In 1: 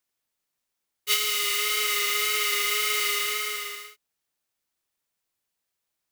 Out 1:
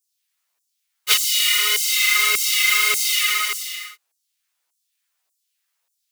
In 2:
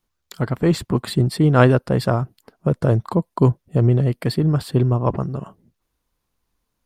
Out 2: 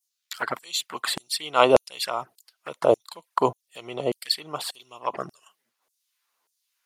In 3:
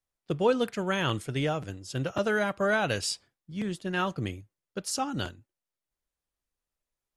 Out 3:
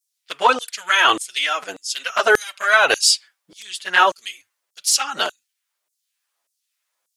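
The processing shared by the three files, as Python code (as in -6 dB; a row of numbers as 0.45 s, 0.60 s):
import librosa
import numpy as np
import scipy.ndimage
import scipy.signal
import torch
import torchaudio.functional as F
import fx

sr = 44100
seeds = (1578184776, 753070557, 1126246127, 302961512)

y = fx.env_flanger(x, sr, rest_ms=11.8, full_db=-15.5)
y = fx.filter_lfo_highpass(y, sr, shape='saw_down', hz=1.7, low_hz=530.0, high_hz=7700.0, q=1.2)
y = librosa.util.normalize(y) * 10.0 ** (-1.5 / 20.0)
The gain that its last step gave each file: +10.5 dB, +7.0 dB, +18.0 dB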